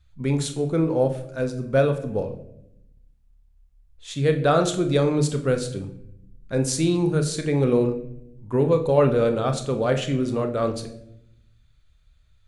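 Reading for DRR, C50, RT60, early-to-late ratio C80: 6.0 dB, 11.5 dB, 0.75 s, 14.0 dB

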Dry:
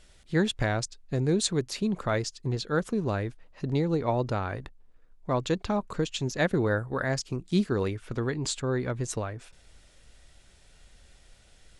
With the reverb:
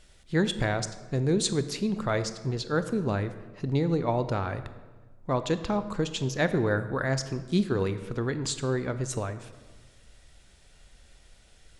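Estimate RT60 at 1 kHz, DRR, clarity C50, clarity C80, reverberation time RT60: 1.3 s, 11.0 dB, 12.5 dB, 14.0 dB, 1.4 s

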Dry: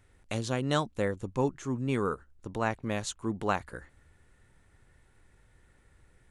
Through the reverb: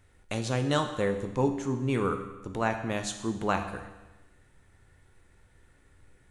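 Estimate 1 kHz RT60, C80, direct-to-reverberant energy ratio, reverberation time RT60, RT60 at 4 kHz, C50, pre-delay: 1.1 s, 10.5 dB, 6.0 dB, 1.1 s, 1.1 s, 8.5 dB, 10 ms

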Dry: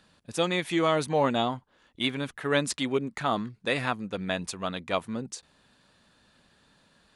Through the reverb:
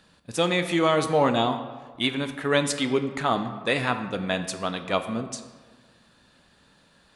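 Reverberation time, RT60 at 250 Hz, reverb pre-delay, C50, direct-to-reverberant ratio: 1.5 s, 1.5 s, 9 ms, 10.0 dB, 8.0 dB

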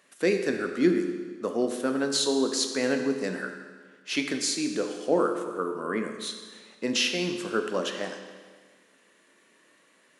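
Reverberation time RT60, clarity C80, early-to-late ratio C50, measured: 1.6 s, 8.0 dB, 7.0 dB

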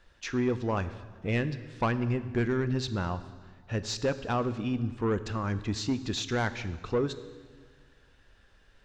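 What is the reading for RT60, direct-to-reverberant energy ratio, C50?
1.6 s, 12.0 dB, 14.0 dB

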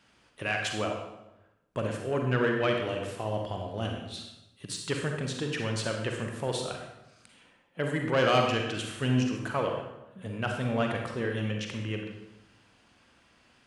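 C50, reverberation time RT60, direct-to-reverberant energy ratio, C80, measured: 3.5 dB, 0.90 s, 1.5 dB, 5.5 dB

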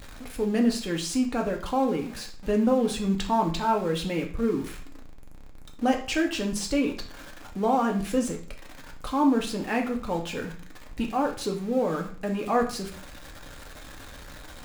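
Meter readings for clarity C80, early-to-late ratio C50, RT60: 14.0 dB, 9.5 dB, 0.45 s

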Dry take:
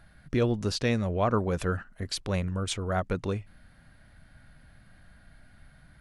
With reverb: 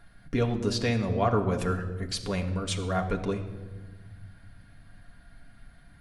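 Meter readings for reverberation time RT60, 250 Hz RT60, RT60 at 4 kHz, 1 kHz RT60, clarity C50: 1.4 s, 2.4 s, 0.95 s, 1.2 s, 10.5 dB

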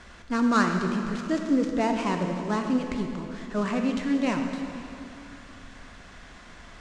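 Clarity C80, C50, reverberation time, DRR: 5.5 dB, 4.5 dB, 2.8 s, 3.5 dB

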